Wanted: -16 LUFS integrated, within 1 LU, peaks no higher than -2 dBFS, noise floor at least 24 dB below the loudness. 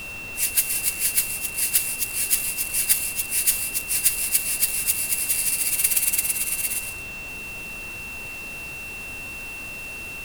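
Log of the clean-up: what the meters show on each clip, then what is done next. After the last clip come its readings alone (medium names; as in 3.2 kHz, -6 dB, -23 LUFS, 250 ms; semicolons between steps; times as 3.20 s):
steady tone 2.7 kHz; tone level -33 dBFS; noise floor -35 dBFS; noise floor target -47 dBFS; loudness -22.5 LUFS; peak level -1.5 dBFS; loudness target -16.0 LUFS
-> band-stop 2.7 kHz, Q 30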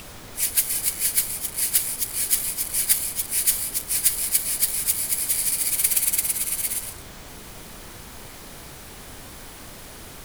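steady tone not found; noise floor -41 dBFS; noise floor target -45 dBFS
-> noise print and reduce 6 dB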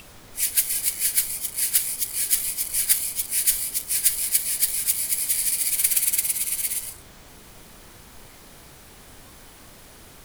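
noise floor -47 dBFS; loudness -21.0 LUFS; peak level -2.0 dBFS; loudness target -16.0 LUFS
-> trim +5 dB; peak limiter -2 dBFS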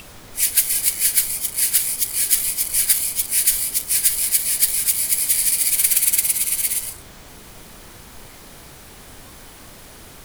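loudness -16.5 LUFS; peak level -2.0 dBFS; noise floor -42 dBFS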